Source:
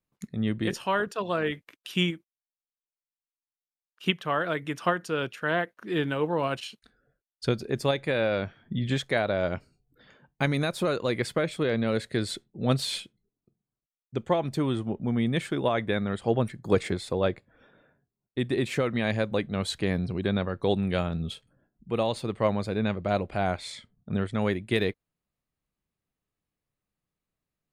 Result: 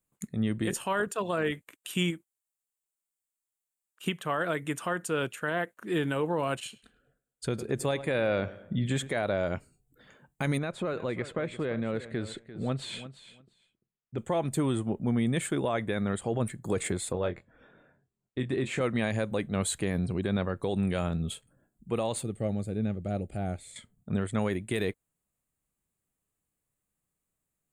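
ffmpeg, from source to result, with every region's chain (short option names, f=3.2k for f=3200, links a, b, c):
-filter_complex "[0:a]asettb=1/sr,asplit=3[a][b][c];[a]atrim=end=6.554[d];[b]atrim=start=6.55:end=9.23,asetpts=PTS-STARTPTS,afade=t=in:d=0.004:c=qsin,afade=t=out:st=2.676:d=0.004:c=qsin,highshelf=f=7k:g=-6,asplit=2[e][f];[f]adelay=104,lowpass=f=2.6k:p=1,volume=-17dB,asplit=2[g][h];[h]adelay=104,lowpass=f=2.6k:p=1,volume=0.5,asplit=2[i][j];[j]adelay=104,lowpass=f=2.6k:p=1,volume=0.5,asplit=2[k][l];[l]adelay=104,lowpass=f=2.6k:p=1,volume=0.5[m];[e][g][i][k][m]amix=inputs=5:normalize=0,atrim=end_sample=118188[n];[c]atrim=start=9.226[o];[d][n]acrossfade=d=0.004:c1=hsin:c2=qsin[p];[p][o]acrossfade=d=0.004:c1=qsin:c2=hsin,asettb=1/sr,asplit=3[q][r][s];[q]atrim=end=10.584[t];[r]atrim=start=10.58:end=14.18,asetpts=PTS-STARTPTS,afade=t=in:d=0.004:c=qsin,afade=t=out:st=3.596:d=0.004:c=qsin,lowpass=3k,acompressor=threshold=-31dB:ratio=2:attack=3.2:release=140:knee=1:detection=peak,aecho=1:1:345|690:0.2|0.0319,atrim=end_sample=158760[u];[s]atrim=start=14.176[v];[t][u]acrossfade=d=0.004:c1=hsin:c2=qsin[w];[w][v]acrossfade=d=0.004:c1=qsin:c2=hsin,asettb=1/sr,asplit=3[x][y][z];[x]atrim=end=17.124[aa];[y]atrim=start=17.12:end=18.81,asetpts=PTS-STARTPTS,afade=t=in:d=0.004:c=qsin,afade=t=out:st=1.686:d=0.004:c=qsin,lowpass=4.7k,acompressor=threshold=-29dB:ratio=2:attack=3.2:release=140:knee=1:detection=peak,asplit=2[ab][ac];[ac]adelay=23,volume=-8dB[ad];[ab][ad]amix=inputs=2:normalize=0,atrim=end_sample=74529[ae];[z]atrim=start=18.806[af];[aa][ae]acrossfade=d=0.004:c1=hsin:c2=qsin[ag];[ag][af]acrossfade=d=0.004:c1=qsin:c2=hsin,asettb=1/sr,asplit=3[ah][ai][aj];[ah]atrim=end=22.234[ak];[ai]atrim=start=22.23:end=23.76,asetpts=PTS-STARTPTS,afade=t=in:d=0.004:c=qsin,afade=t=out:st=1.526:d=0.004:c=qsin,acrossover=split=2600[al][am];[am]acompressor=threshold=-50dB:ratio=4:attack=1:release=60[an];[al][an]amix=inputs=2:normalize=0,asuperstop=centerf=1000:order=8:qfactor=4.8,equalizer=f=1.3k:t=o:w=2.8:g=-14[ao];[aj]atrim=start=23.756[ap];[ak][ao]acrossfade=d=0.004:c1=hsin:c2=qsin[aq];[aq][ap]acrossfade=d=0.004:c1=qsin:c2=hsin,deesser=0.55,highshelf=f=6.4k:t=q:w=3:g=6.5,alimiter=limit=-19dB:level=0:latency=1:release=45"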